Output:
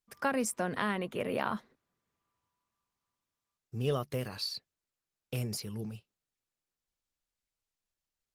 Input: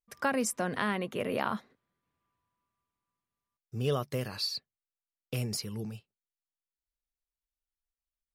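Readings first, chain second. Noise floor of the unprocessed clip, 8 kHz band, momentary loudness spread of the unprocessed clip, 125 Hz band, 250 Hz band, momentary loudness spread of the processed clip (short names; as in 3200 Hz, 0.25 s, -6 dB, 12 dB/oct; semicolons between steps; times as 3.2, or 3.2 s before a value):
under -85 dBFS, -2.5 dB, 10 LU, -1.5 dB, -1.5 dB, 10 LU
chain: gain -1 dB; Opus 20 kbps 48000 Hz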